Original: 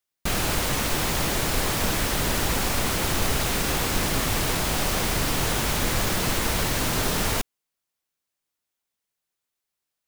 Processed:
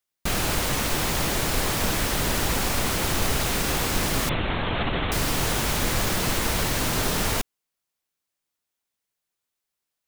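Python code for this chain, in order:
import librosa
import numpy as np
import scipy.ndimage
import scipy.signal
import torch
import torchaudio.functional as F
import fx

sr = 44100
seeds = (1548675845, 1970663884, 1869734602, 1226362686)

y = fx.lpc_vocoder(x, sr, seeds[0], excitation='whisper', order=10, at=(4.29, 5.12))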